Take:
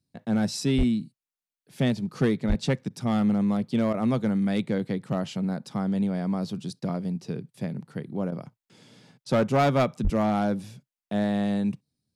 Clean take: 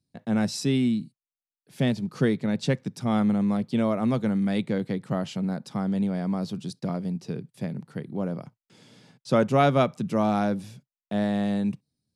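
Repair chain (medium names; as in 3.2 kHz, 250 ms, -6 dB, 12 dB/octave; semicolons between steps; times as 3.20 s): clip repair -16.5 dBFS; de-plosive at 0.77/2.48/10.03 s; interpolate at 2.89/3.93/8.31/9.25 s, 10 ms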